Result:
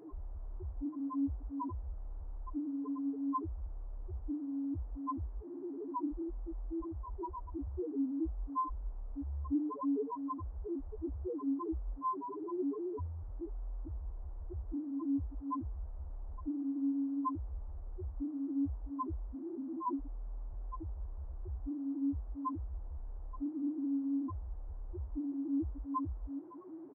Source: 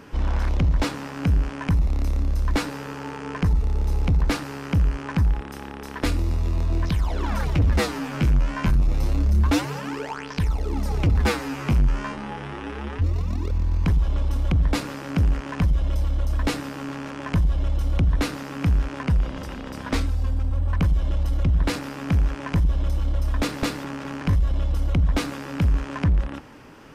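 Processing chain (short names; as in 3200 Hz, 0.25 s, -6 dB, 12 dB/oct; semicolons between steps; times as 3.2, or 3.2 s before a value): resonant high shelf 2200 Hz -13.5 dB, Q 1.5; notches 50/100/150/200/250/300/350 Hz; comb 2.8 ms; compressor, threshold -27 dBFS, peak gain reduction 15 dB; small resonant body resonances 350/520/980/3700 Hz, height 16 dB, ringing for 25 ms; loudest bins only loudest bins 1; band noise 110–960 Hz -59 dBFS; gain -7 dB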